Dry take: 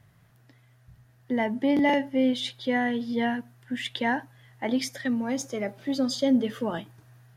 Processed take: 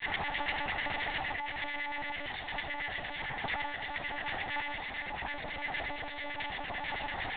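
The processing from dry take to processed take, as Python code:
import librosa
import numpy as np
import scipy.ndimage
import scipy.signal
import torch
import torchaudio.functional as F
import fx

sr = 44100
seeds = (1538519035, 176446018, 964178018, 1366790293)

y = fx.bin_compress(x, sr, power=0.2)
y = scipy.signal.sosfilt(scipy.signal.butter(16, 150.0, 'highpass', fs=sr, output='sos'), y)
y = fx.tilt_eq(y, sr, slope=3.5)
y = fx.notch(y, sr, hz=2100.0, q=29.0)
y = fx.over_compress(y, sr, threshold_db=-24.0, ratio=-1.0)
y = fx.quant_companded(y, sr, bits=2)
y = fx.filter_lfo_bandpass(y, sr, shape='square', hz=8.9, low_hz=810.0, high_hz=2200.0, q=2.5)
y = fx.granulator(y, sr, seeds[0], grain_ms=100.0, per_s=20.0, spray_ms=15.0, spread_st=0)
y = fx.room_shoebox(y, sr, seeds[1], volume_m3=3100.0, walls='furnished', distance_m=2.3)
y = fx.lpc_monotone(y, sr, seeds[2], pitch_hz=290.0, order=10)
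y = y * librosa.db_to_amplitude(-5.0)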